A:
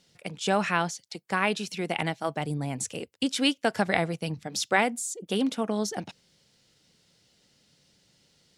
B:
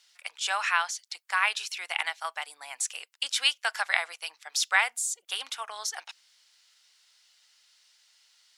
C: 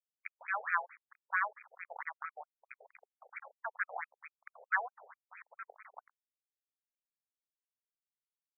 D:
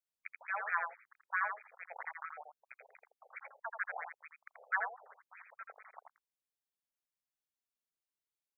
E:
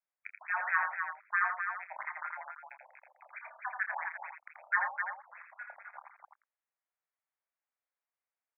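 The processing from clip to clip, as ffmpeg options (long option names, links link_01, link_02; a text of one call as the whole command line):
ffmpeg -i in.wav -af "highpass=frequency=1000:width=0.5412,highpass=frequency=1000:width=1.3066,volume=3dB" out.wav
ffmpeg -i in.wav -af "acrusher=bits=4:mix=0:aa=0.000001,afftfilt=real='re*between(b*sr/1024,570*pow(1800/570,0.5+0.5*sin(2*PI*4.5*pts/sr))/1.41,570*pow(1800/570,0.5+0.5*sin(2*PI*4.5*pts/sr))*1.41)':imag='im*between(b*sr/1024,570*pow(1800/570,0.5+0.5*sin(2*PI*4.5*pts/sr))/1.41,570*pow(1800/570,0.5+0.5*sin(2*PI*4.5*pts/sr))*1.41)':win_size=1024:overlap=0.75,volume=-4dB" out.wav
ffmpeg -i in.wav -af "aecho=1:1:83:0.531,volume=-2.5dB" out.wav
ffmpeg -i in.wav -af "highpass=frequency=430:width_type=q:width=0.5412,highpass=frequency=430:width_type=q:width=1.307,lowpass=frequency=2200:width_type=q:width=0.5176,lowpass=frequency=2200:width_type=q:width=0.7071,lowpass=frequency=2200:width_type=q:width=1.932,afreqshift=96,aecho=1:1:29.15|256.6:0.316|0.501,volume=4dB" out.wav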